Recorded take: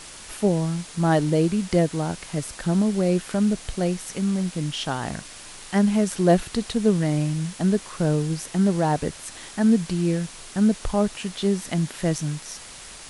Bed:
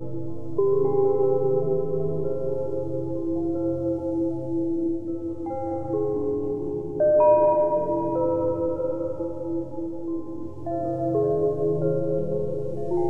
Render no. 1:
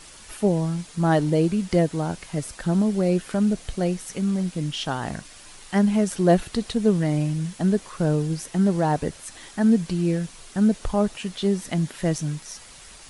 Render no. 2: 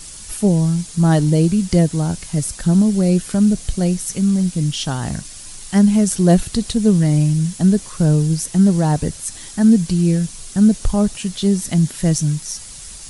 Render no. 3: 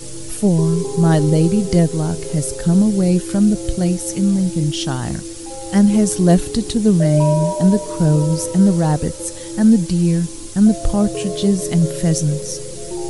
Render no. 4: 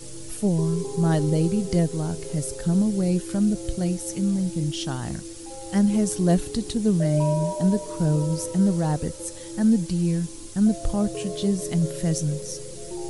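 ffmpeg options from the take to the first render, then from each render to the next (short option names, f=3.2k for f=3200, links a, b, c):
-af "afftdn=nr=6:nf=-42"
-af "bass=f=250:g=11,treble=f=4k:g=13"
-filter_complex "[1:a]volume=-2.5dB[a];[0:a][a]amix=inputs=2:normalize=0"
-af "volume=-7.5dB"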